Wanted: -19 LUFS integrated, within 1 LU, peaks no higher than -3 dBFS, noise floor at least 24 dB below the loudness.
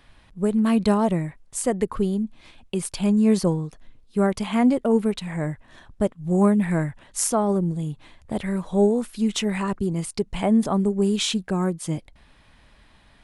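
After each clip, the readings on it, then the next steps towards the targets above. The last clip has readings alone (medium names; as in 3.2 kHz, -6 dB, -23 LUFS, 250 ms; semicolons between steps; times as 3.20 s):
loudness -23.5 LUFS; peak level -6.5 dBFS; loudness target -19.0 LUFS
-> trim +4.5 dB; peak limiter -3 dBFS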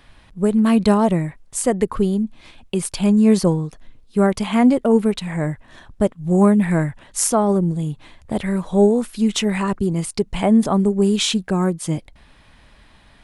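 loudness -19.0 LUFS; peak level -3.0 dBFS; noise floor -51 dBFS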